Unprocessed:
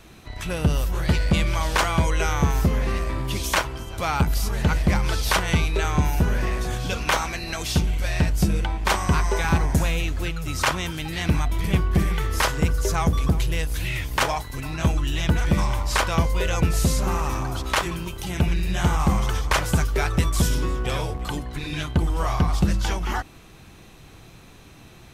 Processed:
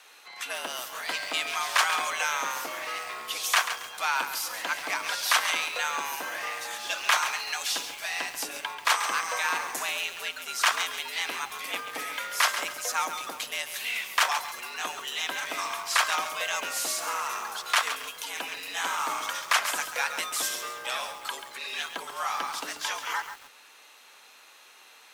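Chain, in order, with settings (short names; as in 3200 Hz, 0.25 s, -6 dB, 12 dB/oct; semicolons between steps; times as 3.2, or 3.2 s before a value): HPF 840 Hz 12 dB/oct; frequency shift +100 Hz; lo-fi delay 0.137 s, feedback 35%, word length 7-bit, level -9 dB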